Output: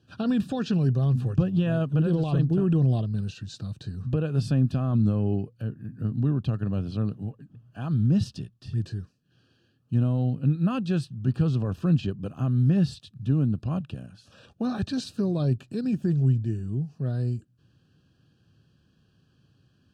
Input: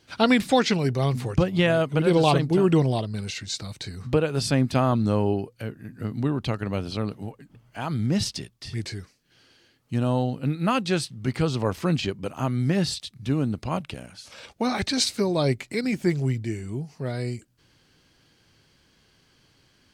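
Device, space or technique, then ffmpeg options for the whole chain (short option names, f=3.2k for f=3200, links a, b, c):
PA system with an anti-feedback notch: -af "highpass=100,asuperstop=centerf=2100:order=8:qfactor=3.4,alimiter=limit=-15dB:level=0:latency=1:release=20,bass=f=250:g=15,treble=f=4k:g=-8,bandreject=f=910:w=6.4,volume=-8dB"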